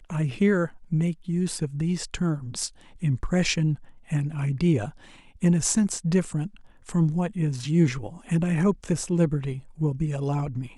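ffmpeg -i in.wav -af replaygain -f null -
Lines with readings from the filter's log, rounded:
track_gain = +5.6 dB
track_peak = 0.296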